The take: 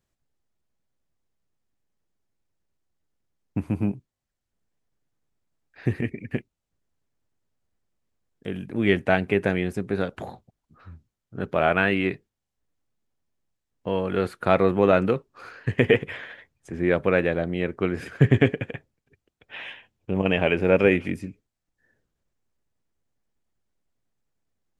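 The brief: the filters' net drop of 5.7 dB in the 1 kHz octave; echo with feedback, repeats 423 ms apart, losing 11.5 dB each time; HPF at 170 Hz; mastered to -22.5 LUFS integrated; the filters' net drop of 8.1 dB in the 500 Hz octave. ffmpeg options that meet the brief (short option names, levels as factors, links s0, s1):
-af "highpass=170,equalizer=f=500:t=o:g=-9,equalizer=f=1000:t=o:g=-5,aecho=1:1:423|846|1269:0.266|0.0718|0.0194,volume=2.11"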